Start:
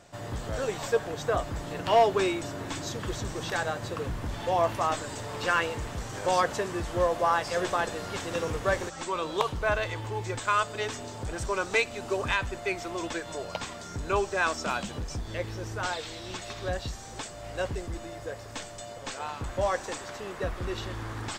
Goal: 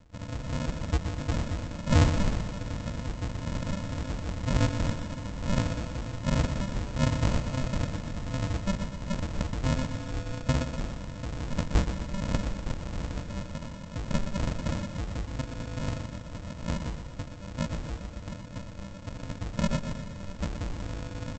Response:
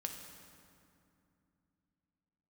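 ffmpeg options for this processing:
-af "bandreject=f=1.3k:w=13,bandreject=f=102.3:t=h:w=4,bandreject=f=204.6:t=h:w=4,bandreject=f=306.9:t=h:w=4,bandreject=f=409.2:t=h:w=4,bandreject=f=511.5:t=h:w=4,aresample=16000,acrusher=samples=41:mix=1:aa=0.000001,aresample=44100,aecho=1:1:122|244|366|488|610|732:0.376|0.203|0.11|0.0592|0.032|0.0173"

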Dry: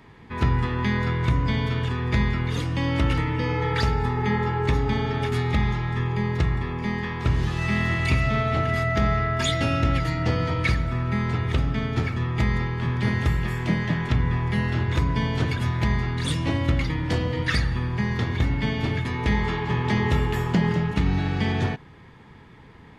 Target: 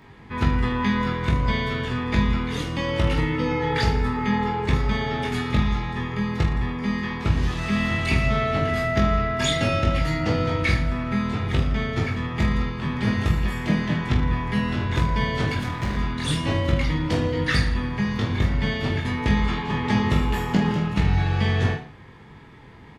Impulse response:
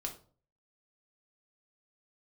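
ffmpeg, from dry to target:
-filter_complex "[0:a]asettb=1/sr,asplit=3[a][b][c];[a]atrim=end=15.574[d];[b]atrim=start=15.57:end=15.97,asetpts=PTS-STARTPTS,afade=t=in:d=0.004:c=qsin,afade=t=out:st=0.396:d=0.004:c=qsin,asoftclip=type=hard:threshold=-24dB[e];[c]atrim=start=15.966[f];[d][e]acrossfade=d=0.004:c1=hsin:c2=qsin[g];[g][f]acrossfade=d=0.004:c1=qsin:c2=hsin,aecho=1:1:20|45|76.25|115.3|164.1:0.631|0.398|0.251|0.158|0.1"

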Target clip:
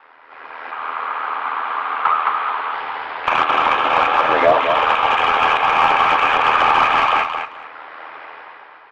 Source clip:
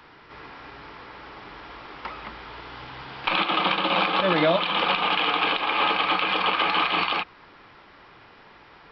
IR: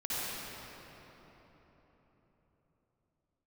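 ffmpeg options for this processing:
-filter_complex "[0:a]acrossover=split=2900[a][b];[b]acompressor=threshold=-36dB:ratio=4:attack=1:release=60[c];[a][c]amix=inputs=2:normalize=0,acrossover=split=450 3100:gain=0.112 1 0.251[d][e][f];[d][e][f]amix=inputs=3:normalize=0,aecho=1:1:6.1:1,dynaudnorm=f=190:g=7:m=13.5dB,asplit=2[g][h];[h]highpass=f=720:p=1,volume=13dB,asoftclip=type=tanh:threshold=-0.5dB[i];[g][i]amix=inputs=2:normalize=0,lowpass=f=1.3k:p=1,volume=-6dB,asoftclip=type=hard:threshold=-3dB,aeval=exprs='val(0)*sin(2*PI*40*n/s)':c=same,asettb=1/sr,asplit=3[j][k][l];[j]atrim=end=0.714[m];[k]atrim=start=0.71:end=2.74,asetpts=PTS-STARTPTS,afade=t=in:d=0.004:c=qsin,afade=t=out:st=2.026:d=0.004:c=qsin,highpass=f=130:w=0.5412,highpass=f=130:w=1.3066,equalizer=f=170:t=q:w=4:g=-5,equalizer=f=330:t=q:w=4:g=-7,equalizer=f=560:t=q:w=4:g=-6,equalizer=f=1.2k:t=q:w=4:g=8,equalizer=f=1.9k:t=q:w=4:g=-4,lowpass=f=4.1k:w=0.5412,lowpass=f=4.1k:w=1.3066[n];[l]atrim=start=2.736[o];[m][n]acrossfade=d=0.004:c1=hsin:c2=qsin[p];[p][o]acrossfade=d=0.004:c1=qsin:c2=hsin,aecho=1:1:217|434|651:0.447|0.0849|0.0161"

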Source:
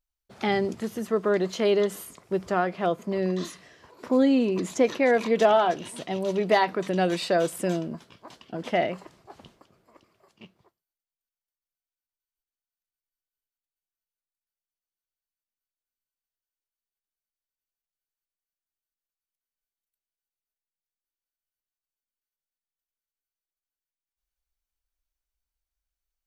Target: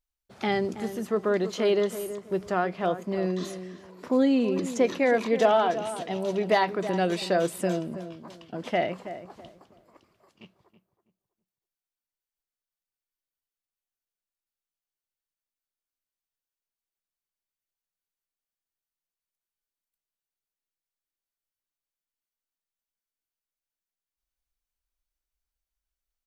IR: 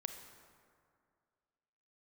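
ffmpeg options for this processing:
-filter_complex "[0:a]asplit=2[a][b];[b]adelay=325,lowpass=f=1.4k:p=1,volume=-11dB,asplit=2[c][d];[d]adelay=325,lowpass=f=1.4k:p=1,volume=0.28,asplit=2[e][f];[f]adelay=325,lowpass=f=1.4k:p=1,volume=0.28[g];[a][c][e][g]amix=inputs=4:normalize=0,volume=-1.5dB"

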